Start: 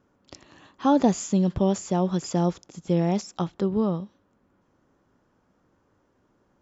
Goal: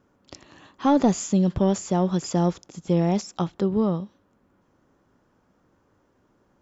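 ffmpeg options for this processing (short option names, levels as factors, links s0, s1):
-af "asoftclip=type=tanh:threshold=0.316,volume=1.26"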